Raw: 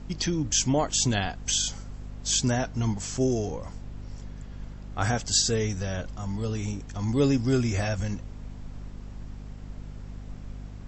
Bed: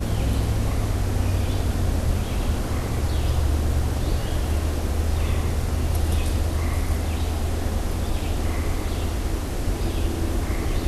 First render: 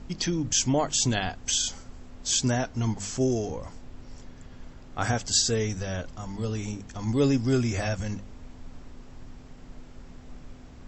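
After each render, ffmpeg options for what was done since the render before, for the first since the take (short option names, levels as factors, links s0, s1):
-af "bandreject=f=50:t=h:w=6,bandreject=f=100:t=h:w=6,bandreject=f=150:t=h:w=6,bandreject=f=200:t=h:w=6"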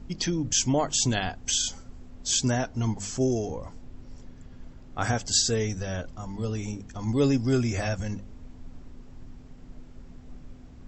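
-af "afftdn=nr=6:nf=-47"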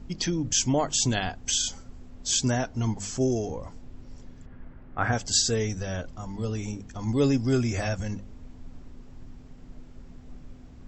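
-filter_complex "[0:a]asplit=3[s0][s1][s2];[s0]afade=t=out:st=4.45:d=0.02[s3];[s1]lowpass=f=1800:t=q:w=1.5,afade=t=in:st=4.45:d=0.02,afade=t=out:st=5.11:d=0.02[s4];[s2]afade=t=in:st=5.11:d=0.02[s5];[s3][s4][s5]amix=inputs=3:normalize=0"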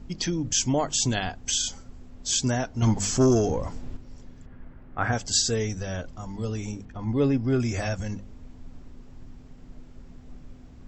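-filter_complex "[0:a]asettb=1/sr,asplit=3[s0][s1][s2];[s0]atrim=end=2.824[s3];[s1]atrim=start=2.82:end=3.97,asetpts=PTS-STARTPTS,afade=t=in:d=0.004:c=qsin,afade=t=out:st=1.146:d=0.004:c=qsin,aeval=exprs='0.188*sin(PI/2*1.58*val(0)/0.188)':c=same[s4];[s2]atrim=start=3.966[s5];[s3][s4]acrossfade=d=0.004:c1=hsin:c2=qsin[s6];[s6][s5]acrossfade=d=0.004:c1=qsin:c2=hsin,asettb=1/sr,asplit=3[s7][s8][s9];[s7]atrim=end=6.854[s10];[s8]atrim=start=6.85:end=7.6,asetpts=PTS-STARTPTS,afade=t=in:d=0.004:c=qsin,afade=t=out:st=0.746:d=0.004:c=qsin,lowpass=2600[s11];[s9]atrim=start=7.596[s12];[s10][s11]acrossfade=d=0.004:c1=hsin:c2=qsin[s13];[s13][s12]acrossfade=d=0.004:c1=qsin:c2=hsin"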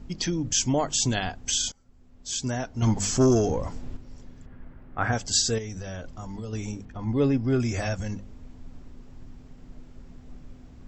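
-filter_complex "[0:a]asettb=1/sr,asplit=3[s0][s1][s2];[s0]atrim=end=5.584[s3];[s1]atrim=start=5.58:end=6.53,asetpts=PTS-STARTPTS,afade=t=in:d=0.004:c=qsin,afade=t=out:st=0.946:d=0.004:c=qsin,acompressor=threshold=0.0282:ratio=6:attack=3.2:release=140:knee=1:detection=peak[s4];[s2]atrim=start=6.526[s5];[s3][s4]acrossfade=d=0.004:c1=hsin:c2=qsin[s6];[s6][s5]acrossfade=d=0.004:c1=qsin:c2=hsin,asplit=2[s7][s8];[s7]atrim=end=1.72,asetpts=PTS-STARTPTS,afade=t=out:st=1.716:d=0.004:c=hsin:silence=0.0707946[s9];[s8]atrim=start=1.72,asetpts=PTS-STARTPTS,afade=t=in:d=1.29:silence=0.0707946[s10];[s9][s10]concat=n=2:v=0:a=1"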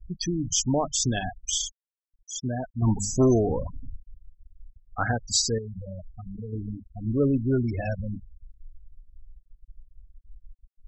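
-af "afftfilt=real='re*gte(hypot(re,im),0.0708)':imag='im*gte(hypot(re,im),0.0708)':win_size=1024:overlap=0.75"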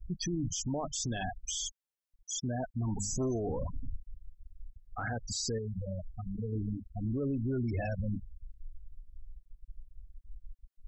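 -af "acompressor=threshold=0.0562:ratio=6,alimiter=level_in=1.41:limit=0.0631:level=0:latency=1:release=14,volume=0.708"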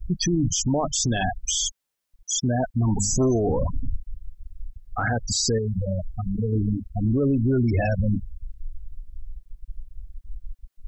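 -af "volume=3.76"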